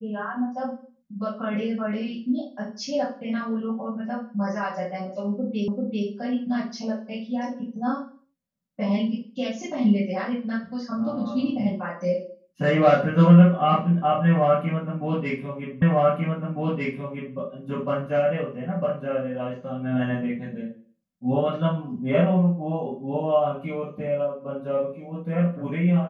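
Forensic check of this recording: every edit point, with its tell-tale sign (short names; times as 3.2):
5.68 repeat of the last 0.39 s
15.82 repeat of the last 1.55 s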